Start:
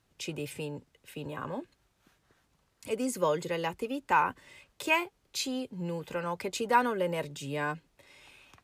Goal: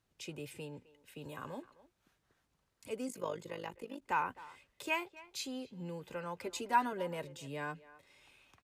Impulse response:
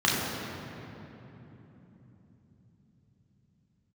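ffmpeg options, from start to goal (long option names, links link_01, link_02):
-filter_complex "[0:a]asplit=3[link_01][link_02][link_03];[link_01]afade=type=out:start_time=1.21:duration=0.02[link_04];[link_02]highshelf=frequency=3900:gain=11.5,afade=type=in:start_time=1.21:duration=0.02,afade=type=out:start_time=1.61:duration=0.02[link_05];[link_03]afade=type=in:start_time=1.61:duration=0.02[link_06];[link_04][link_05][link_06]amix=inputs=3:normalize=0,asplit=3[link_07][link_08][link_09];[link_07]afade=type=out:start_time=3.07:duration=0.02[link_10];[link_08]tremolo=f=50:d=0.824,afade=type=in:start_time=3.07:duration=0.02,afade=type=out:start_time=4.01:duration=0.02[link_11];[link_09]afade=type=in:start_time=4.01:duration=0.02[link_12];[link_10][link_11][link_12]amix=inputs=3:normalize=0,asettb=1/sr,asplit=3[link_13][link_14][link_15];[link_13]atrim=end=6.464[link_16];[link_14]atrim=start=6.46:end=6.93,asetpts=PTS-STARTPTS,afade=type=in:duration=0.004:curve=qsin,afade=type=out:start_time=0.466:duration=0.004:curve=qsin,aecho=1:1:3:0.76,atrim=end_sample=20727[link_17];[link_15]atrim=start=6.926[link_18];[link_16][link_17]acrossfade=duration=0.004:curve1=hsin:curve2=qsin[link_19];[link_19][link_18]acrossfade=duration=0.004:curve1=qsin:curve2=hsin,asplit=2[link_20][link_21];[link_21]adelay=260,highpass=300,lowpass=3400,asoftclip=type=hard:threshold=-19.5dB,volume=-18dB[link_22];[link_20][link_22]amix=inputs=2:normalize=0,volume=-8dB"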